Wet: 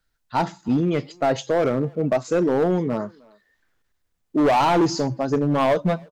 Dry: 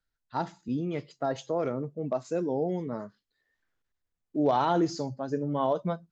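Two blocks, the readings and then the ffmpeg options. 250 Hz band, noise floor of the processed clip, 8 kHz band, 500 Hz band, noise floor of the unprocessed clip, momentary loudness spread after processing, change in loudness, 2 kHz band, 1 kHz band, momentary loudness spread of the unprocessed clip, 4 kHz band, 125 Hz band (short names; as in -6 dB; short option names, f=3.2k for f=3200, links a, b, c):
+9.0 dB, -73 dBFS, n/a, +8.5 dB, -84 dBFS, 8 LU, +8.5 dB, +13.5 dB, +8.0 dB, 10 LU, +11.0 dB, +9.0 dB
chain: -filter_complex "[0:a]acontrast=44,volume=19.5dB,asoftclip=hard,volume=-19.5dB,asplit=2[a][b];[b]adelay=310,highpass=300,lowpass=3.4k,asoftclip=type=hard:threshold=-28dB,volume=-23dB[c];[a][c]amix=inputs=2:normalize=0,volume=5dB"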